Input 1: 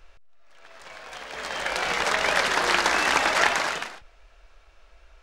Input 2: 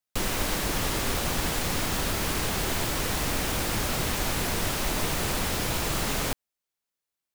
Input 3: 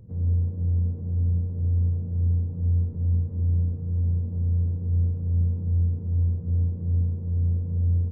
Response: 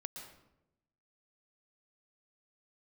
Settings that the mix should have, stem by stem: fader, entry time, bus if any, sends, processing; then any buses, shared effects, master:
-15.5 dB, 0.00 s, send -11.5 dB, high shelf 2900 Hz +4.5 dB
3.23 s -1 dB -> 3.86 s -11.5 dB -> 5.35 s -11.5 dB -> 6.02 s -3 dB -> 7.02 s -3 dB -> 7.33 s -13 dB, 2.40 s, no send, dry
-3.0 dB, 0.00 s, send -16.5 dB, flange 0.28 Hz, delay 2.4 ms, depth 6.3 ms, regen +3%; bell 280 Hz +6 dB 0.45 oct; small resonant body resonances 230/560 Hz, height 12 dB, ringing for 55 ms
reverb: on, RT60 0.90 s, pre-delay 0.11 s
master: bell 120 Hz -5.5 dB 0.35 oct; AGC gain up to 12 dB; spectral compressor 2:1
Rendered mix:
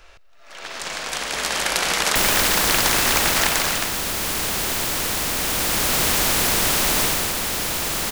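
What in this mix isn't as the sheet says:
stem 1 -15.5 dB -> -7.5 dB; stem 2: entry 2.40 s -> 2.00 s; stem 3: muted

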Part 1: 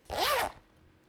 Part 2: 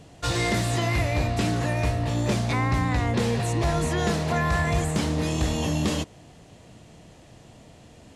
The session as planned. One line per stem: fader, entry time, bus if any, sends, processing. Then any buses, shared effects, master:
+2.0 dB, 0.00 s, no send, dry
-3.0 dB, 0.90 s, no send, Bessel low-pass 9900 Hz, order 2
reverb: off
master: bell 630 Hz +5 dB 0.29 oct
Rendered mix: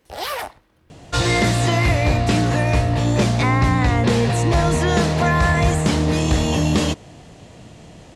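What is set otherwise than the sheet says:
stem 2 -3.0 dB -> +7.0 dB; master: missing bell 630 Hz +5 dB 0.29 oct

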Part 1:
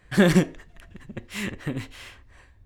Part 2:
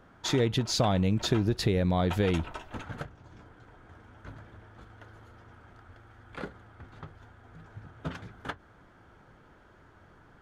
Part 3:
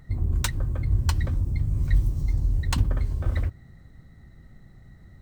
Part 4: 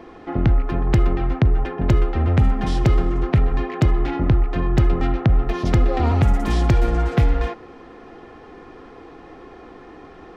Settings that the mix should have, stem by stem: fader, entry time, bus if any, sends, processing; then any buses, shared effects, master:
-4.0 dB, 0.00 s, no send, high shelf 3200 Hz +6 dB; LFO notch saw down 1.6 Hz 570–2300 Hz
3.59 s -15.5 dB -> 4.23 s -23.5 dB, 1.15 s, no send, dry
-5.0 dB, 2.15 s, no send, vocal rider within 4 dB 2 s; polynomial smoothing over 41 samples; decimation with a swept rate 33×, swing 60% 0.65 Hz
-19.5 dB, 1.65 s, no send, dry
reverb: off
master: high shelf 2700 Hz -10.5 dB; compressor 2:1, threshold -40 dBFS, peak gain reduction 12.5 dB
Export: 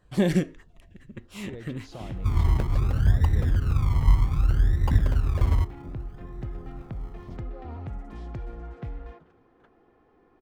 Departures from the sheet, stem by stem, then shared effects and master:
stem 3 -5.0 dB -> +2.5 dB; master: missing compressor 2:1, threshold -40 dBFS, peak gain reduction 12.5 dB

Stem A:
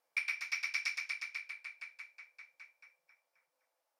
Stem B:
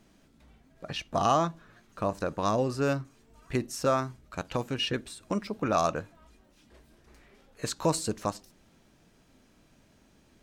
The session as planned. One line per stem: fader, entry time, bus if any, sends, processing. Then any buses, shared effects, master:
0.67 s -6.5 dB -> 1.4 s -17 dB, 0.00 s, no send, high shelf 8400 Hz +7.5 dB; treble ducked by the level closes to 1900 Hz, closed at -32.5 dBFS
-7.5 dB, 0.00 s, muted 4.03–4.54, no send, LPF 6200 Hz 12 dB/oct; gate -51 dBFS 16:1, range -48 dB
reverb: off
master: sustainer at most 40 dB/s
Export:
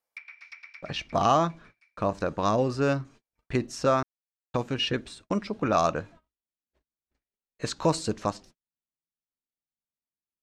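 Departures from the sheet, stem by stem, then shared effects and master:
stem B -7.5 dB -> +2.5 dB; master: missing sustainer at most 40 dB/s

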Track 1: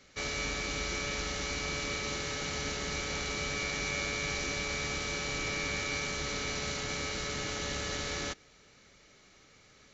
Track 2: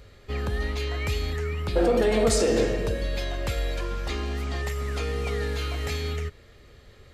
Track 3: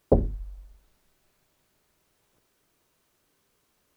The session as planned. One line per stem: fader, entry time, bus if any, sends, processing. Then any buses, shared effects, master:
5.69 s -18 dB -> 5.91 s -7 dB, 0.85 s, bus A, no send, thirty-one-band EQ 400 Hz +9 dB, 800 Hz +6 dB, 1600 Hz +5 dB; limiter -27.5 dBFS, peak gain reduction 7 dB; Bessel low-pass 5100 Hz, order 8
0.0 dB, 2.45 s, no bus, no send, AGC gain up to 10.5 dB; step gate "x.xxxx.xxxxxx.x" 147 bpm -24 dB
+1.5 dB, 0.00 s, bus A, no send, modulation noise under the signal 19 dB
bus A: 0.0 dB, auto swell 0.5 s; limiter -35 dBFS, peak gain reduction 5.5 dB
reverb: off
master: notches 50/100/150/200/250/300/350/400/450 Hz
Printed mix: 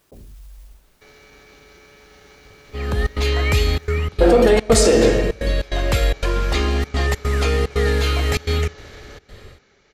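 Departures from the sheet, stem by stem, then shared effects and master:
stem 1 -18.0 dB -> -10.5 dB; stem 3 +1.5 dB -> +8.5 dB; master: missing notches 50/100/150/200/250/300/350/400/450 Hz

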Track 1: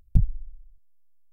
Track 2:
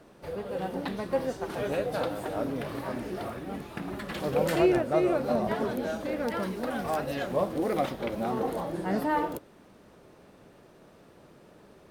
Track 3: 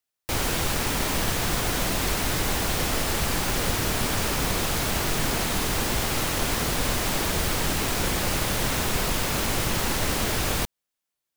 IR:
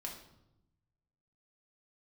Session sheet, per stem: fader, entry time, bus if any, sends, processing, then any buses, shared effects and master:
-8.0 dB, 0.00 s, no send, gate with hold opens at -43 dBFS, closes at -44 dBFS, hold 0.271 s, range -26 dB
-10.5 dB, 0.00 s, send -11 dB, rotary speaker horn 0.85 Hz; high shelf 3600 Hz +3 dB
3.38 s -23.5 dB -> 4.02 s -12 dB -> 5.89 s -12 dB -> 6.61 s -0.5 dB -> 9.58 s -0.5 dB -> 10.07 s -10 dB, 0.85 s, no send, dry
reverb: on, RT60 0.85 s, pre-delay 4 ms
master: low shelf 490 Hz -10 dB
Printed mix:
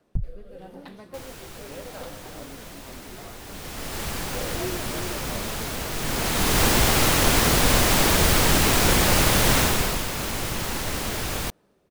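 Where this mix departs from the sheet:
stem 3 -23.5 dB -> -16.5 dB; master: missing low shelf 490 Hz -10 dB

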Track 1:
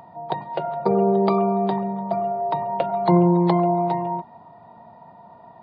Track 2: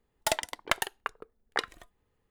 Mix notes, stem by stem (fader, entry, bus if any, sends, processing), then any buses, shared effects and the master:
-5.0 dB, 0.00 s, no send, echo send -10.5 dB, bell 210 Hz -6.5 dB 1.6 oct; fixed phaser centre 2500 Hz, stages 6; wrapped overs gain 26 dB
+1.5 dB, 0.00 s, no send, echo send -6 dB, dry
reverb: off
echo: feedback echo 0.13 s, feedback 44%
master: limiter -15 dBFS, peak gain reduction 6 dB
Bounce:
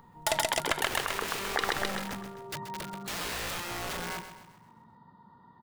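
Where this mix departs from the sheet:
stem 1: missing bell 210 Hz -6.5 dB 1.6 oct; stem 2 +1.5 dB -> +10.0 dB

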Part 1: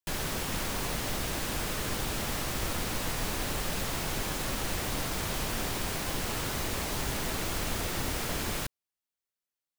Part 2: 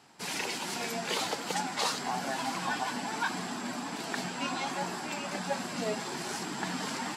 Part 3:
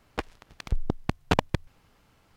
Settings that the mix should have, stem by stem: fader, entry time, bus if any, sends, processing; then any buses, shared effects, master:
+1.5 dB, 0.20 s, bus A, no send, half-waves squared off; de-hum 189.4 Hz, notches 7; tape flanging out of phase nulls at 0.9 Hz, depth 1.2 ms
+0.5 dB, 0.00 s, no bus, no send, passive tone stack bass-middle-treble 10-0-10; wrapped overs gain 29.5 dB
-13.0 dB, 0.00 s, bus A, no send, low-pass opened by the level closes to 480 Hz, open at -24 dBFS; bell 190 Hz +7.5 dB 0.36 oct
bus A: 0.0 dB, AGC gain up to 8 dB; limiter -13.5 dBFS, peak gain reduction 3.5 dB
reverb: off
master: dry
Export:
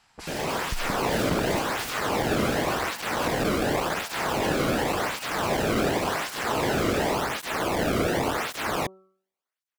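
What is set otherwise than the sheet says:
stem 2 +0.5 dB -> +7.0 dB; master: extra high shelf 2800 Hz -11 dB

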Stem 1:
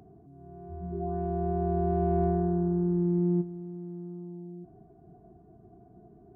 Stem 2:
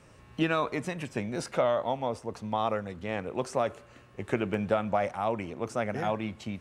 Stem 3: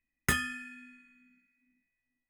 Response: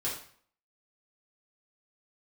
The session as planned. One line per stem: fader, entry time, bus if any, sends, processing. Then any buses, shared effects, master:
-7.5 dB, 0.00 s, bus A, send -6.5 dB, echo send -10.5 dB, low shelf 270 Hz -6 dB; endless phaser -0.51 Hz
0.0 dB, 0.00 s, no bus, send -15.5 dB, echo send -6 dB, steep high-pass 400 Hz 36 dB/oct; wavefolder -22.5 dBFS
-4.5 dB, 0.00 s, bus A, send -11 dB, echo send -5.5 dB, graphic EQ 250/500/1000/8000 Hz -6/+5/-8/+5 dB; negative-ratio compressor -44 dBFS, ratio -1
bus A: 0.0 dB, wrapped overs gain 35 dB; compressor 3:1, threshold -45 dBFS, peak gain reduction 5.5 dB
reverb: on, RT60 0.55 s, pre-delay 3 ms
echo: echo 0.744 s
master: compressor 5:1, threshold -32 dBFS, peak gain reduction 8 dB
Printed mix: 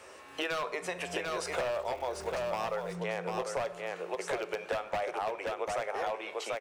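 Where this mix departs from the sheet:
stem 2 0.0 dB -> +7.0 dB; stem 3 -4.5 dB -> -12.0 dB

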